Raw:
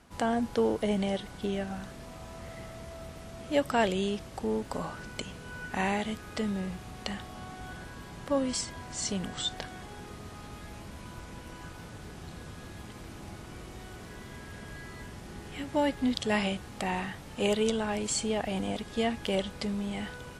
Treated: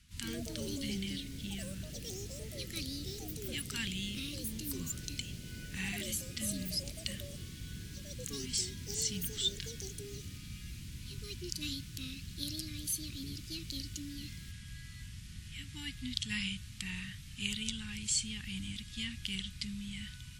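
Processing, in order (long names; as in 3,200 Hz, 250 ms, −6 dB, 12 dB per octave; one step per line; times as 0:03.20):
Chebyshev band-stop filter 120–2,900 Hz, order 2
delay with pitch and tempo change per echo 88 ms, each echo +6 semitones, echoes 3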